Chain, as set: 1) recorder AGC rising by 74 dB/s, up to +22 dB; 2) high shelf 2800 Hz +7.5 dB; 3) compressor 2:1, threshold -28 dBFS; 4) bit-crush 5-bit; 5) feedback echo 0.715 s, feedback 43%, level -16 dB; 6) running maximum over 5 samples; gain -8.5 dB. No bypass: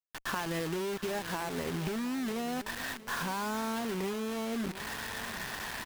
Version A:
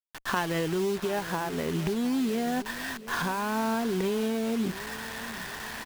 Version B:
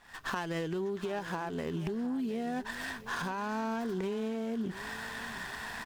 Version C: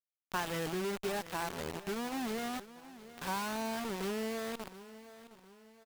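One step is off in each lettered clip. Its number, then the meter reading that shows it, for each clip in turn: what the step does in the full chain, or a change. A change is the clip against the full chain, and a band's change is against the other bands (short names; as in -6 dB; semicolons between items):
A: 3, mean gain reduction 4.5 dB; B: 4, distortion -7 dB; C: 1, crest factor change +3.0 dB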